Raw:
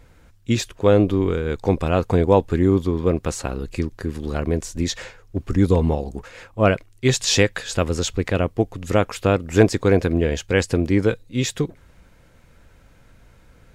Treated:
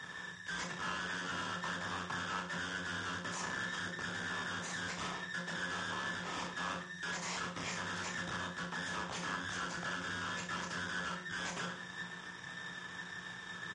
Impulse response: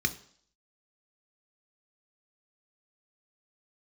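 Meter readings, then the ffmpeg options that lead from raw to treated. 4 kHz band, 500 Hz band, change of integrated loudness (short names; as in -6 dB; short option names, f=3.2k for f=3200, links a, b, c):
-11.5 dB, -28.5 dB, -18.5 dB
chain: -filter_complex "[0:a]afftfilt=real='real(if(between(b,1,1012),(2*floor((b-1)/92)+1)*92-b,b),0)':imag='imag(if(between(b,1,1012),(2*floor((b-1)/92)+1)*92-b,b),0)*if(between(b,1,1012),-1,1)':win_size=2048:overlap=0.75,adynamicequalizer=threshold=0.0112:dfrequency=450:dqfactor=1.2:tfrequency=450:tqfactor=1.2:attack=5:release=100:ratio=0.375:range=2.5:mode=cutabove:tftype=bell,acrossover=split=190[a][b];[b]acompressor=threshold=-25dB:ratio=3[c];[a][c]amix=inputs=2:normalize=0,alimiter=limit=-20.5dB:level=0:latency=1:release=72,acompressor=threshold=-35dB:ratio=10,aeval=exprs='0.0794*(cos(1*acos(clip(val(0)/0.0794,-1,1)))-cos(1*PI/2))+0.000891*(cos(3*acos(clip(val(0)/0.0794,-1,1)))-cos(3*PI/2))+0.0355*(cos(5*acos(clip(val(0)/0.0794,-1,1)))-cos(5*PI/2))+0.0316*(cos(7*acos(clip(val(0)/0.0794,-1,1)))-cos(7*PI/2))+0.0126*(cos(8*acos(clip(val(0)/0.0794,-1,1)))-cos(8*PI/2))':c=same,acrusher=bits=9:mix=0:aa=0.000001,afreqshift=-180,aeval=exprs='(tanh(282*val(0)+0.45)-tanh(0.45))/282':c=same,highpass=130,equalizer=f=170:t=q:w=4:g=-6,equalizer=f=1k:t=q:w=4:g=9,equalizer=f=4.2k:t=q:w=4:g=-7,lowpass=f=7.1k:w=0.5412,lowpass=f=7.1k:w=1.3066,aecho=1:1:30|63|99.3|139.2|183.2:0.631|0.398|0.251|0.158|0.1,volume=10.5dB" -ar 44100 -c:a libmp3lame -b:a 48k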